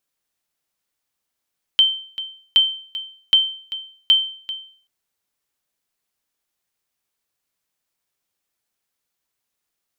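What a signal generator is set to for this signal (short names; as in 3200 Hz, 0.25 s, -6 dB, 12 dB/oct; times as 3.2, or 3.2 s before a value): sonar ping 3110 Hz, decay 0.49 s, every 0.77 s, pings 4, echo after 0.39 s, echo -15 dB -6.5 dBFS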